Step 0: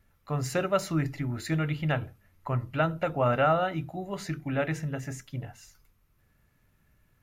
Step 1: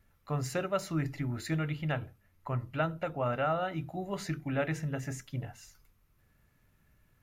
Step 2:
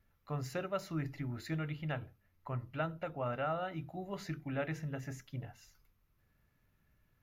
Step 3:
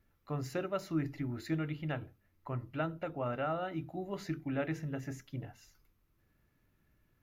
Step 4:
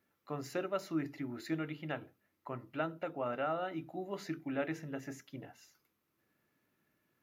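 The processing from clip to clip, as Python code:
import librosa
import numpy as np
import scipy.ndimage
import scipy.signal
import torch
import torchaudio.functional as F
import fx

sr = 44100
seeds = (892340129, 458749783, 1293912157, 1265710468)

y1 = fx.rider(x, sr, range_db=3, speed_s=0.5)
y1 = y1 * librosa.db_to_amplitude(-4.0)
y2 = fx.peak_eq(y1, sr, hz=8400.0, db=-13.5, octaves=0.34)
y2 = y2 * librosa.db_to_amplitude(-5.5)
y3 = fx.peak_eq(y2, sr, hz=320.0, db=7.0, octaves=0.71)
y4 = scipy.signal.sosfilt(scipy.signal.butter(2, 220.0, 'highpass', fs=sr, output='sos'), y3)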